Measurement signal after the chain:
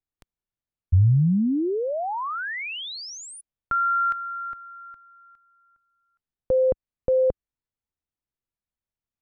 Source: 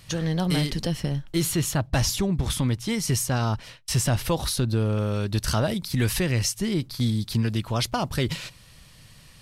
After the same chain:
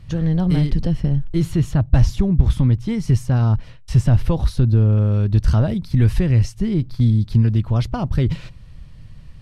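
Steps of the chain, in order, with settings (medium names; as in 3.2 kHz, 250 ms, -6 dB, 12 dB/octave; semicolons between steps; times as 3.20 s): RIAA curve playback; trim -2 dB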